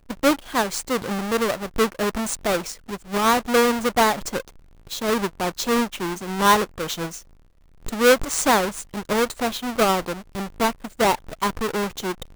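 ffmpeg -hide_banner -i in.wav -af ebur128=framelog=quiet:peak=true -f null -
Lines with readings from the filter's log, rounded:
Integrated loudness:
  I:         -22.5 LUFS
  Threshold: -32.9 LUFS
Loudness range:
  LRA:         2.2 LU
  Threshold: -42.6 LUFS
  LRA low:   -24.0 LUFS
  LRA high:  -21.8 LUFS
True peak:
  Peak:       -6.4 dBFS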